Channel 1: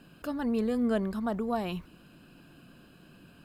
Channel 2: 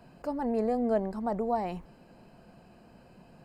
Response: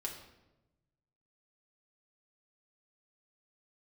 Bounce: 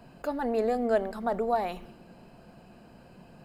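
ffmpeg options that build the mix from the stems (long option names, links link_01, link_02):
-filter_complex "[0:a]volume=-5.5dB,asplit=2[link_01][link_02];[link_02]volume=-5dB[link_03];[1:a]volume=-1,volume=2.5dB,asplit=2[link_04][link_05];[link_05]apad=whole_len=151875[link_06];[link_01][link_06]sidechaingate=range=-33dB:threshold=-47dB:ratio=16:detection=peak[link_07];[2:a]atrim=start_sample=2205[link_08];[link_03][link_08]afir=irnorm=-1:irlink=0[link_09];[link_07][link_04][link_09]amix=inputs=3:normalize=0"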